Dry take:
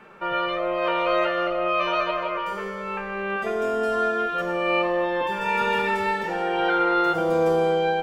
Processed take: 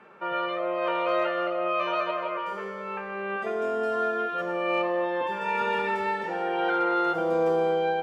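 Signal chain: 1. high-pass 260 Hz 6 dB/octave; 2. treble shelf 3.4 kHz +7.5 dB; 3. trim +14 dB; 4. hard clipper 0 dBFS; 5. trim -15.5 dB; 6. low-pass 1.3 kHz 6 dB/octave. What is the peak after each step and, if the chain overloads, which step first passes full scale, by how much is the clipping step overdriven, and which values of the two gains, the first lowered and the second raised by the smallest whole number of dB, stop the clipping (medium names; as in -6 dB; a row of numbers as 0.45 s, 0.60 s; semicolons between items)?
-10.5 dBFS, -9.5 dBFS, +4.5 dBFS, 0.0 dBFS, -15.5 dBFS, -16.0 dBFS; step 3, 4.5 dB; step 3 +9 dB, step 5 -10.5 dB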